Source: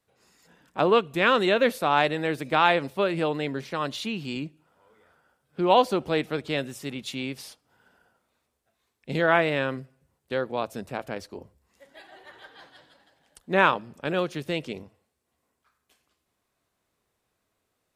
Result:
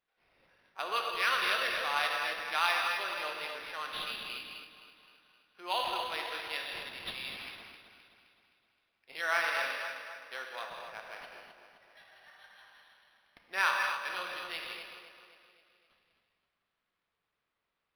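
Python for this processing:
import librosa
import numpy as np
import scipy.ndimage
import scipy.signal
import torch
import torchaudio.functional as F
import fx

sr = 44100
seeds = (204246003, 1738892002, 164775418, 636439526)

p1 = x + fx.echo_feedback(x, sr, ms=260, feedback_pct=53, wet_db=-9.0, dry=0)
p2 = fx.dynamic_eq(p1, sr, hz=4100.0, q=0.73, threshold_db=-41.0, ratio=4.0, max_db=5)
p3 = scipy.signal.sosfilt(scipy.signal.butter(2, 1300.0, 'highpass', fs=sr, output='sos'), p2)
p4 = fx.rev_gated(p3, sr, seeds[0], gate_ms=290, shape='flat', drr_db=0.5)
p5 = np.interp(np.arange(len(p4)), np.arange(len(p4))[::6], p4[::6])
y = F.gain(torch.from_numpy(p5), -6.0).numpy()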